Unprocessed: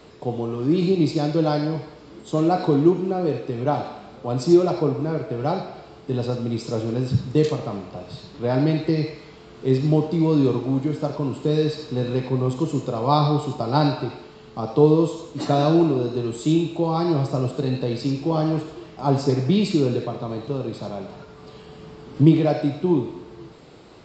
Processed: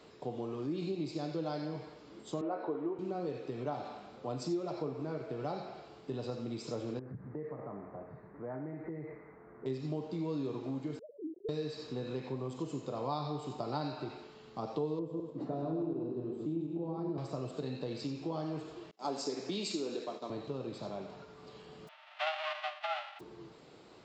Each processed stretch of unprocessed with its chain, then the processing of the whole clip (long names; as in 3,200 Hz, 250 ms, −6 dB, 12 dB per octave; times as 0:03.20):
0:02.41–0:02.99: flat-topped band-pass 740 Hz, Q 0.51 + double-tracking delay 13 ms −7.5 dB
0:06.99–0:09.66: elliptic low-pass filter 2,000 Hz + downward compressor 3 to 1, threshold −30 dBFS
0:10.99–0:11.49: three sine waves on the formant tracks + Gaussian smoothing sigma 24 samples
0:14.99–0:17.18: feedback delay that plays each chunk backwards 105 ms, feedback 44%, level −3.5 dB + resonant band-pass 240 Hz, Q 0.69
0:18.91–0:20.30: downward expander −29 dBFS + high-pass filter 190 Hz 24 dB per octave + bass and treble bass −5 dB, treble +10 dB
0:21.87–0:23.19: spectral envelope flattened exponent 0.1 + loudspeaker in its box 140–2,500 Hz, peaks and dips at 220 Hz −5 dB, 320 Hz −3 dB, 490 Hz −4 dB, 1,100 Hz −5 dB, 1,700 Hz −4 dB + frequency shifter +470 Hz
whole clip: downward compressor 3 to 1, threshold −25 dBFS; low-shelf EQ 120 Hz −10 dB; level −8.5 dB